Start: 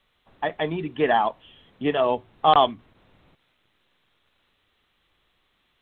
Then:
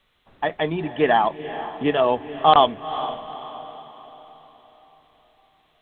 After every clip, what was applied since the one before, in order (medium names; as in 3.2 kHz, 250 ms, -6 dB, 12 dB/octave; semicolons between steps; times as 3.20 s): echo that smears into a reverb 457 ms, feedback 46%, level -12.5 dB; trim +2.5 dB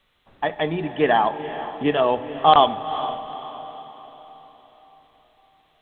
reverberation RT60 1.7 s, pre-delay 3 ms, DRR 14 dB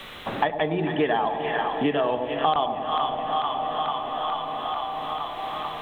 two-band feedback delay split 920 Hz, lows 97 ms, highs 441 ms, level -8 dB; three bands compressed up and down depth 100%; trim -3 dB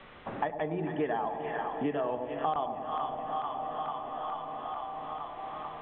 Gaussian low-pass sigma 3.4 samples; trim -7.5 dB